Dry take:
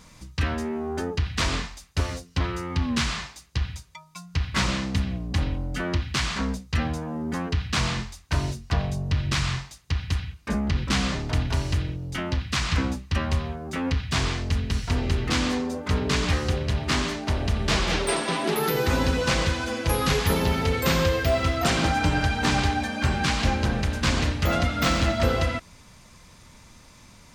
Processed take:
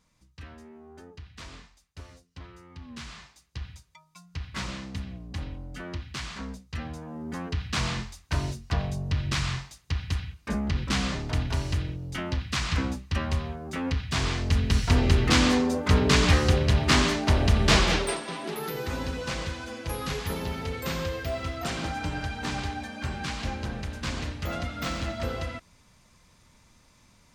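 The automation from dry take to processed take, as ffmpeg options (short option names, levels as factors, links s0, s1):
-af "volume=1.5,afade=t=in:st=2.81:d=0.89:silence=0.354813,afade=t=in:st=6.83:d=1.09:silence=0.446684,afade=t=in:st=14.17:d=0.65:silence=0.473151,afade=t=out:st=17.76:d=0.44:silence=0.237137"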